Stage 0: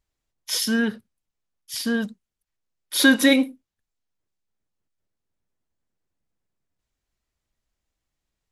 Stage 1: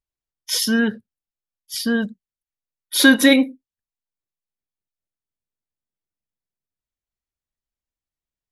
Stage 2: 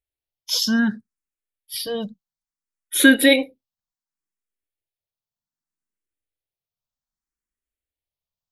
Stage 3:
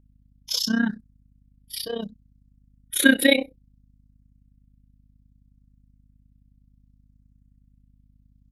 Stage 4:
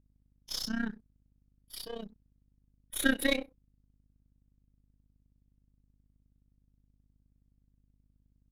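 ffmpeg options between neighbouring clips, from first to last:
-af "afftdn=nr=16:nf=-40,volume=3.5dB"
-filter_complex "[0:a]asplit=2[a][b];[b]afreqshift=0.64[c];[a][c]amix=inputs=2:normalize=1,volume=1.5dB"
-af "aeval=exprs='val(0)+0.00224*(sin(2*PI*50*n/s)+sin(2*PI*2*50*n/s)/2+sin(2*PI*3*50*n/s)/3+sin(2*PI*4*50*n/s)/4+sin(2*PI*5*50*n/s)/5)':c=same,tremolo=f=31:d=0.824"
-af "aeval=exprs='if(lt(val(0),0),0.447*val(0),val(0))':c=same,volume=-8.5dB"

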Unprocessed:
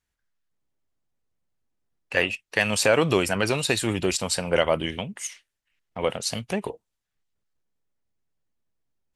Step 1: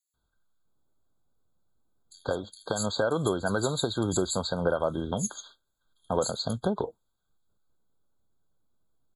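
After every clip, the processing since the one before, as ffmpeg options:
-filter_complex "[0:a]acompressor=threshold=-29dB:ratio=5,acrossover=split=5100[a][b];[a]adelay=140[c];[c][b]amix=inputs=2:normalize=0,afftfilt=real='re*eq(mod(floor(b*sr/1024/1600),2),0)':imag='im*eq(mod(floor(b*sr/1024/1600),2),0)':win_size=1024:overlap=0.75,volume=6dB"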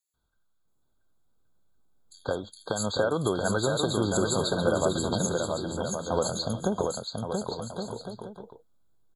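-af "aecho=1:1:680|1122|1409|1596|1717:0.631|0.398|0.251|0.158|0.1"

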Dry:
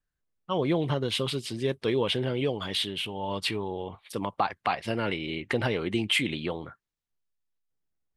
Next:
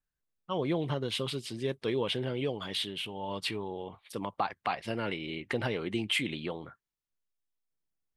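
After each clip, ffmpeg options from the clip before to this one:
-af "equalizer=f=87:t=o:w=0.26:g=-7,volume=-4.5dB"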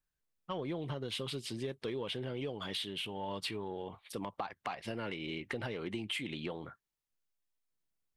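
-af "acompressor=threshold=-34dB:ratio=6,asoftclip=type=tanh:threshold=-25.5dB"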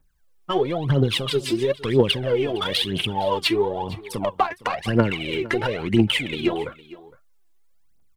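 -filter_complex "[0:a]aphaser=in_gain=1:out_gain=1:delay=3.1:decay=0.78:speed=1:type=triangular,asplit=2[a][b];[b]adynamicsmooth=sensitivity=7:basefreq=1.9k,volume=-1.5dB[c];[a][c]amix=inputs=2:normalize=0,aecho=1:1:460:0.106,volume=8.5dB"

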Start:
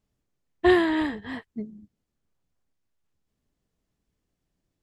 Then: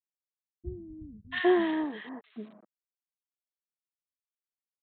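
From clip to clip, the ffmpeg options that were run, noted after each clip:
-filter_complex "[0:a]aresample=8000,aeval=exprs='val(0)*gte(abs(val(0)),0.00562)':c=same,aresample=44100,acrossover=split=200|1300[a][b][c];[c]adelay=680[d];[b]adelay=800[e];[a][e][d]amix=inputs=3:normalize=0,volume=-3.5dB"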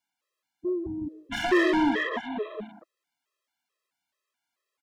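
-filter_complex "[0:a]asplit=2[a][b];[b]highpass=f=720:p=1,volume=29dB,asoftclip=type=tanh:threshold=-13dB[c];[a][c]amix=inputs=2:normalize=0,lowpass=f=2k:p=1,volume=-6dB,aecho=1:1:187:0.501,afftfilt=real='re*gt(sin(2*PI*2.3*pts/sr)*(1-2*mod(floor(b*sr/1024/340),2)),0)':imag='im*gt(sin(2*PI*2.3*pts/sr)*(1-2*mod(floor(b*sr/1024/340),2)),0)':win_size=1024:overlap=0.75"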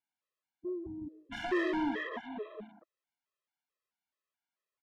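-af "lowpass=f=3.7k:p=1,volume=-9dB"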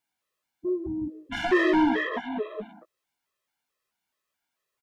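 -filter_complex "[0:a]asplit=2[a][b];[b]adelay=16,volume=-8dB[c];[a][c]amix=inputs=2:normalize=0,volume=9dB"

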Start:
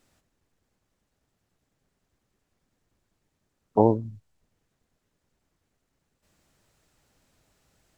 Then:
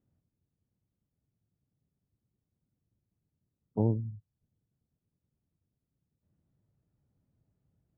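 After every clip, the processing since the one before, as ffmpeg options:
-af "bandpass=f=120:t=q:w=1.3:csg=0"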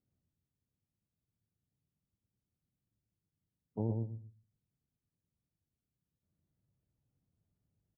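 -filter_complex "[0:a]asplit=2[a][b];[b]adelay=118,lowpass=f=920:p=1,volume=-3.5dB,asplit=2[c][d];[d]adelay=118,lowpass=f=920:p=1,volume=0.2,asplit=2[e][f];[f]adelay=118,lowpass=f=920:p=1,volume=0.2[g];[a][c][e][g]amix=inputs=4:normalize=0,volume=-8dB"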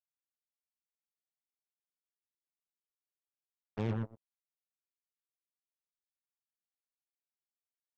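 -af "acrusher=bits=5:mix=0:aa=0.5"

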